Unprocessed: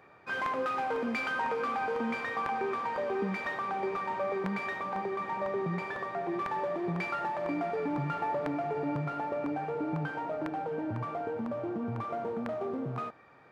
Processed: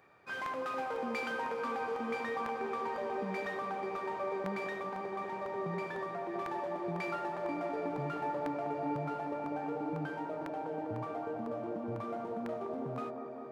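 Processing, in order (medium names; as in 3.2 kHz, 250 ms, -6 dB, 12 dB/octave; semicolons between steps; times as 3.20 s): treble shelf 4.7 kHz +8 dB; on a send: feedback echo behind a band-pass 200 ms, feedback 77%, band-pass 490 Hz, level -3.5 dB; on the sum: trim -6.5 dB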